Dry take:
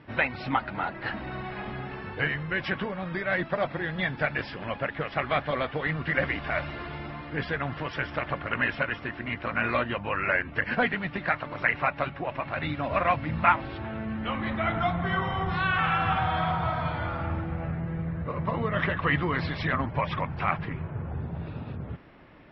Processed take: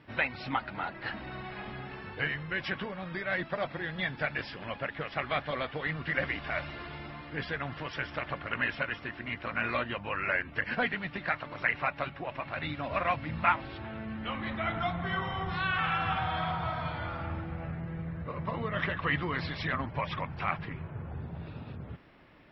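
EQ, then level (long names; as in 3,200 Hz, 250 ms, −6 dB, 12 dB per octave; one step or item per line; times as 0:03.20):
high-shelf EQ 3,000 Hz +8 dB
−6.0 dB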